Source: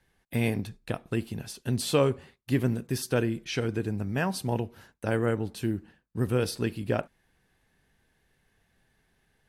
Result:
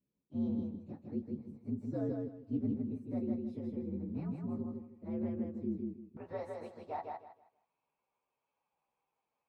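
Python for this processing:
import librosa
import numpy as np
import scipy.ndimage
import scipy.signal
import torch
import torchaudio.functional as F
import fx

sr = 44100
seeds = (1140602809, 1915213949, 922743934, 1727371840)

y = fx.partial_stretch(x, sr, pct=120)
y = fx.bandpass_q(y, sr, hz=fx.steps((0.0, 240.0), (6.17, 850.0)), q=2.4)
y = fx.echo_feedback(y, sr, ms=158, feedback_pct=25, wet_db=-3.5)
y = y * librosa.db_to_amplitude(-2.0)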